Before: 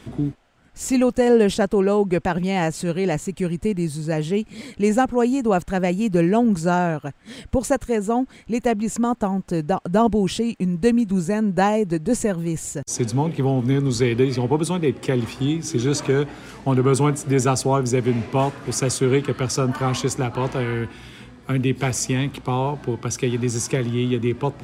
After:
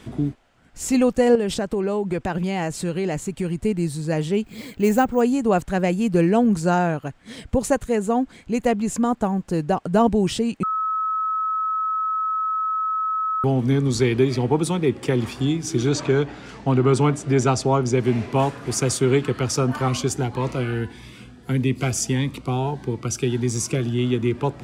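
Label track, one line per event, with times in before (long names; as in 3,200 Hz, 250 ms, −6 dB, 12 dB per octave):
1.350000	3.570000	downward compressor 5 to 1, threshold −19 dBFS
4.440000	5.210000	bad sample-rate conversion rate divided by 2×, down none, up hold
10.630000	13.440000	beep over 1,290 Hz −20.5 dBFS
15.890000	18.000000	low-pass filter 6,600 Hz
19.880000	23.990000	phaser whose notches keep moving one way rising 1.6 Hz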